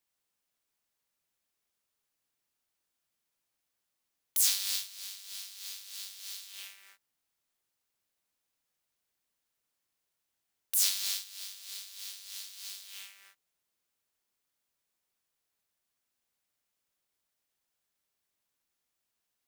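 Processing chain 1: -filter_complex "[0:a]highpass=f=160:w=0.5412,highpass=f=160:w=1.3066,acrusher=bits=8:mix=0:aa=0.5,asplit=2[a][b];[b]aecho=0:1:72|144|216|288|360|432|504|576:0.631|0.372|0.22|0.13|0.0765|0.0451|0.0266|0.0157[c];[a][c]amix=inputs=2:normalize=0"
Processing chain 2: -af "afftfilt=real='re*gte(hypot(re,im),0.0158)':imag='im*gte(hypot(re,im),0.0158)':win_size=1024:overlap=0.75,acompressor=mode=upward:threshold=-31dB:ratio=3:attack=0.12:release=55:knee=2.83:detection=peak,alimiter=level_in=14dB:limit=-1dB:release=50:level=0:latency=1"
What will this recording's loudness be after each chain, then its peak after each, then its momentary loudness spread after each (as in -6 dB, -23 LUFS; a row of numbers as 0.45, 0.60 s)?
-30.5, -21.0 LUFS; -10.0, -1.0 dBFS; 18, 18 LU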